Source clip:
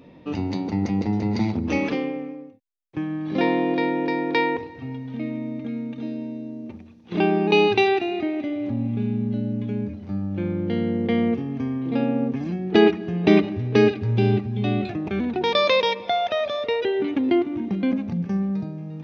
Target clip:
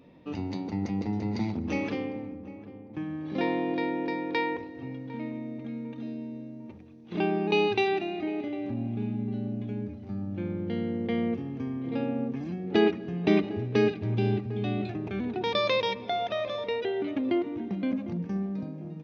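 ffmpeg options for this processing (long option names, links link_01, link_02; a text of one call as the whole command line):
ffmpeg -i in.wav -filter_complex "[0:a]asplit=2[link_01][link_02];[link_02]adelay=752,lowpass=frequency=960:poles=1,volume=-14dB,asplit=2[link_03][link_04];[link_04]adelay=752,lowpass=frequency=960:poles=1,volume=0.53,asplit=2[link_05][link_06];[link_06]adelay=752,lowpass=frequency=960:poles=1,volume=0.53,asplit=2[link_07][link_08];[link_08]adelay=752,lowpass=frequency=960:poles=1,volume=0.53,asplit=2[link_09][link_10];[link_10]adelay=752,lowpass=frequency=960:poles=1,volume=0.53[link_11];[link_01][link_03][link_05][link_07][link_09][link_11]amix=inputs=6:normalize=0,volume=-7dB" out.wav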